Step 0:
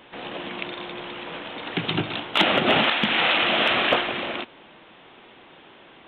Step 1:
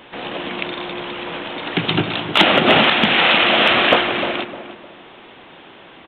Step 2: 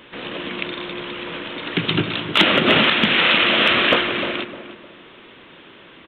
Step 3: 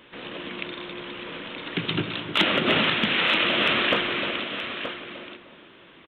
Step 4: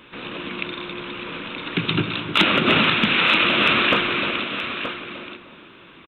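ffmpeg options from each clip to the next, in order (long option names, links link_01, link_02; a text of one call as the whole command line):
ffmpeg -i in.wav -filter_complex "[0:a]asplit=2[link_01][link_02];[link_02]adelay=305,lowpass=frequency=1300:poles=1,volume=-10dB,asplit=2[link_03][link_04];[link_04]adelay=305,lowpass=frequency=1300:poles=1,volume=0.34,asplit=2[link_05][link_06];[link_06]adelay=305,lowpass=frequency=1300:poles=1,volume=0.34,asplit=2[link_07][link_08];[link_08]adelay=305,lowpass=frequency=1300:poles=1,volume=0.34[link_09];[link_01][link_03][link_05][link_07][link_09]amix=inputs=5:normalize=0,volume=6.5dB" out.wav
ffmpeg -i in.wav -af "equalizer=frequency=770:width_type=o:width=0.52:gain=-10,volume=-1dB" out.wav
ffmpeg -i in.wav -af "aecho=1:1:926:0.335,volume=-6.5dB" out.wav
ffmpeg -i in.wav -af "aecho=1:1:0.8:0.31,volume=4dB" out.wav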